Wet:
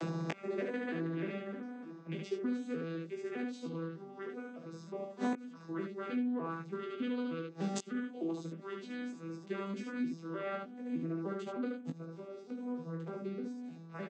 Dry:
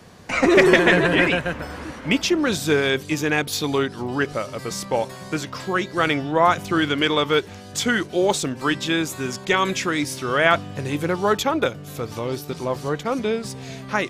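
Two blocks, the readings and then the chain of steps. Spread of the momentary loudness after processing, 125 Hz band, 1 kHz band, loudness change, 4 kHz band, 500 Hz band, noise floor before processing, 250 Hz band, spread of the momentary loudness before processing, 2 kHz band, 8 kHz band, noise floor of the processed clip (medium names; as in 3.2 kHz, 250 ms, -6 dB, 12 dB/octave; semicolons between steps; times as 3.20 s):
8 LU, -15.5 dB, -22.5 dB, -18.5 dB, -28.5 dB, -19.0 dB, -39 dBFS, -13.5 dB, 12 LU, -25.5 dB, -25.0 dB, -52 dBFS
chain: vocoder on a broken chord minor triad, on E3, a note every 304 ms; dynamic bell 800 Hz, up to -4 dB, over -36 dBFS, Q 2.3; early reflections 40 ms -10.5 dB, 73 ms -4 dB; inverted gate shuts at -26 dBFS, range -35 dB; compression 6:1, threshold -50 dBFS, peak gain reduction 15 dB; high-pass 180 Hz; doubling 19 ms -4.5 dB; small resonant body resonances 260/380 Hz, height 7 dB; trim +15 dB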